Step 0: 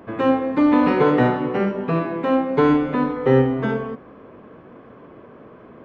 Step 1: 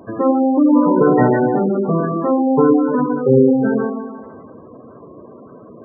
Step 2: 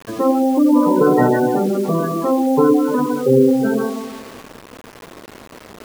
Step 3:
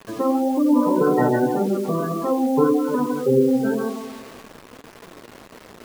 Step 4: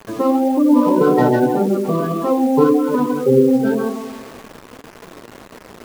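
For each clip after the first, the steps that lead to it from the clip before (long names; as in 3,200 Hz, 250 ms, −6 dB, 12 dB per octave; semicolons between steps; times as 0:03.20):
echo with a time of its own for lows and highs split 650 Hz, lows 110 ms, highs 153 ms, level −4 dB; gate on every frequency bin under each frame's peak −15 dB strong; level +3 dB
low-shelf EQ 110 Hz −6.5 dB; bit-depth reduction 6 bits, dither none
flanger 1.8 Hz, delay 4.2 ms, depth 4.5 ms, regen +74%
running median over 15 samples; level +4.5 dB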